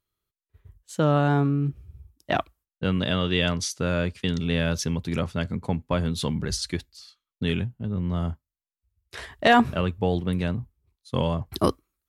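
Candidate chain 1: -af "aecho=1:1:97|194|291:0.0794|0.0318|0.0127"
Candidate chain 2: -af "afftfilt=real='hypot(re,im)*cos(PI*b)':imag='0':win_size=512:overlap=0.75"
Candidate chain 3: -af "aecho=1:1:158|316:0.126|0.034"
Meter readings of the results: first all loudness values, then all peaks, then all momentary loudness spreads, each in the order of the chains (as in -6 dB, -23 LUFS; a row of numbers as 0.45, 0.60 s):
-25.5, -31.0, -26.0 LUFS; -6.5, -6.0, -6.5 dBFS; 12, 14, 12 LU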